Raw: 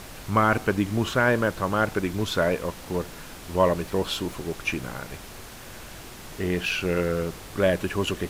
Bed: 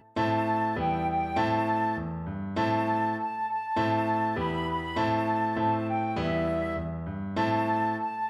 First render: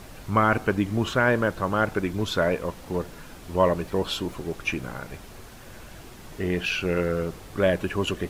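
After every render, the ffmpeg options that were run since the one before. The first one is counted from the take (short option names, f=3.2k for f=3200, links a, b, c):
-af "afftdn=nr=6:nf=-42"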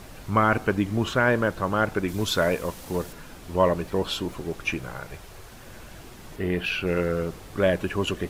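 -filter_complex "[0:a]asettb=1/sr,asplit=3[a][b][c];[a]atrim=end=2.084[d];[b]atrim=start=2.08:end=3.13,asetpts=PTS-STARTPTS,afade=t=in:d=0.004:c=qsin,afade=t=out:st=1.046:d=0.004:c=qsin,highshelf=f=4.4k:g=9.5[e];[c]atrim=start=3.126[f];[d][e]acrossfade=d=0.004:c1=hsin:c2=qsin[g];[g][f]acrossfade=d=0.004:c1=qsin:c2=hsin,asettb=1/sr,asplit=3[h][i][j];[h]atrim=end=4.774[k];[i]atrim=start=4.77:end=5.51,asetpts=PTS-STARTPTS,afade=t=in:d=0.004:c=qsin,afade=t=out:st=0.736:d=0.004:c=qsin,equalizer=f=240:t=o:w=0.38:g=-14[l];[j]atrim=start=5.506[m];[k][l]acrossfade=d=0.004:c1=hsin:c2=qsin[n];[n][m]acrossfade=d=0.004:c1=qsin:c2=hsin,asettb=1/sr,asplit=3[o][p][q];[o]atrim=end=6.364[r];[p]atrim=start=6.36:end=6.87,asetpts=PTS-STARTPTS,afade=t=in:d=0.004:c=qsin,afade=t=out:st=0.506:d=0.004:c=qsin,equalizer=f=6.3k:w=1.6:g=-7.5[s];[q]atrim=start=6.866[t];[r][s]acrossfade=d=0.004:c1=hsin:c2=qsin[u];[u][t]acrossfade=d=0.004:c1=qsin:c2=hsin"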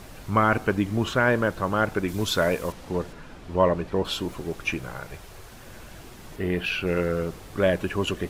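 -filter_complex "[0:a]asettb=1/sr,asplit=3[a][b][c];[a]atrim=end=2.724[d];[b]atrim=start=2.72:end=4.05,asetpts=PTS-STARTPTS,afade=t=in:d=0.004:c=qsin,afade=t=out:st=1.326:d=0.004:c=qsin,aemphasis=mode=reproduction:type=50fm[e];[c]atrim=start=4.046[f];[d][e]acrossfade=d=0.004:c1=hsin:c2=qsin[g];[g][f]acrossfade=d=0.004:c1=qsin:c2=hsin"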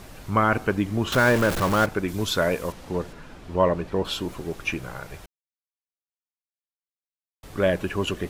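-filter_complex "[0:a]asettb=1/sr,asplit=3[a][b][c];[a]atrim=end=1.124[d];[b]atrim=start=1.12:end=1.86,asetpts=PTS-STARTPTS,afade=t=in:d=0.004:c=qsin,afade=t=out:st=0.736:d=0.004:c=qsin,aeval=exprs='val(0)+0.5*0.0708*sgn(val(0))':c=same[e];[c]atrim=start=1.856[f];[d][e]acrossfade=d=0.004:c1=hsin:c2=qsin[g];[g][f]acrossfade=d=0.004:c1=qsin:c2=hsin,asplit=3[h][i][j];[h]atrim=end=5.26,asetpts=PTS-STARTPTS,afade=t=out:st=5.256:d=0.004:c=hsin[k];[i]atrim=start=5.26:end=7.43,asetpts=PTS-STARTPTS,volume=0[l];[j]atrim=start=7.43,asetpts=PTS-STARTPTS,afade=t=in:d=0.004:c=hsin[m];[k][l][m]concat=n=3:v=0:a=1"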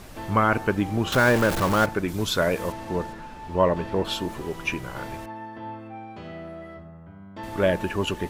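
-filter_complex "[1:a]volume=-10.5dB[a];[0:a][a]amix=inputs=2:normalize=0"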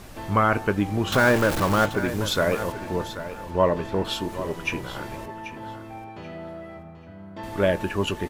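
-filter_complex "[0:a]asplit=2[a][b];[b]adelay=20,volume=-14dB[c];[a][c]amix=inputs=2:normalize=0,aecho=1:1:785|1570|2355:0.237|0.0545|0.0125"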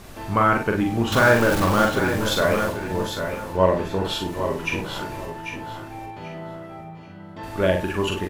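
-filter_complex "[0:a]asplit=2[a][b];[b]adelay=43,volume=-4dB[c];[a][c]amix=inputs=2:normalize=0,aecho=1:1:56|804:0.316|0.398"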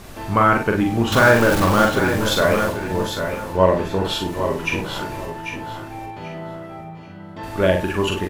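-af "volume=3dB,alimiter=limit=-2dB:level=0:latency=1"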